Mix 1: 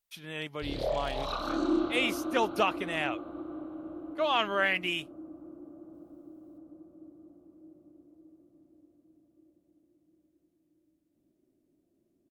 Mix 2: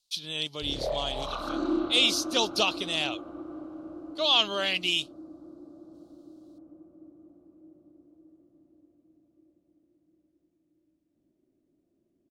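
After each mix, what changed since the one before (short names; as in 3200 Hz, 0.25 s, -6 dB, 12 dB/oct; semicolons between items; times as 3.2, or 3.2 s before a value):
speech: add resonant high shelf 2800 Hz +14 dB, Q 3; master: add air absorption 51 m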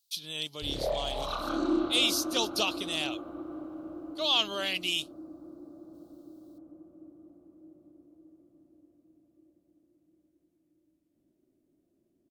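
speech -4.5 dB; master: remove air absorption 51 m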